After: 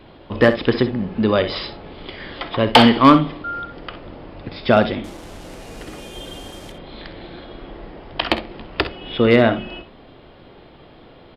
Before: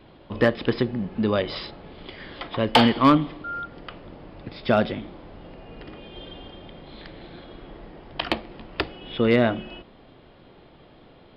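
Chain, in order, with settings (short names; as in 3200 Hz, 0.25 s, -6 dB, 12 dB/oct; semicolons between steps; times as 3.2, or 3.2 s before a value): 5.04–6.72 delta modulation 64 kbps, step -41.5 dBFS; bell 170 Hz -2.5 dB 0.83 oct; on a send: early reflections 52 ms -16 dB, 64 ms -13.5 dB; on the sum: gain +6 dB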